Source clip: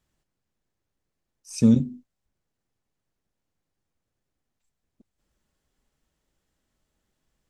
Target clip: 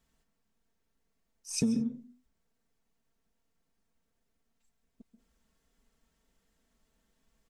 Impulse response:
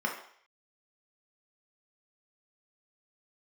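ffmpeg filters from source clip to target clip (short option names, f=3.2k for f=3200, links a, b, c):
-filter_complex "[0:a]aecho=1:1:4.4:0.63,acompressor=threshold=-27dB:ratio=8,asplit=2[a][b];[1:a]atrim=start_sample=2205,atrim=end_sample=4410,adelay=133[c];[b][c]afir=irnorm=-1:irlink=0,volume=-17dB[d];[a][d]amix=inputs=2:normalize=0"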